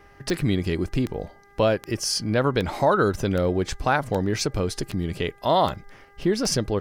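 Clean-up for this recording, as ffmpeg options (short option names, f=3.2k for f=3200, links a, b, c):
-af "adeclick=t=4,bandreject=f=401.6:t=h:w=4,bandreject=f=803.2:t=h:w=4,bandreject=f=1.2048k:t=h:w=4,bandreject=f=1.6064k:t=h:w=4,bandreject=f=2.008k:t=h:w=4"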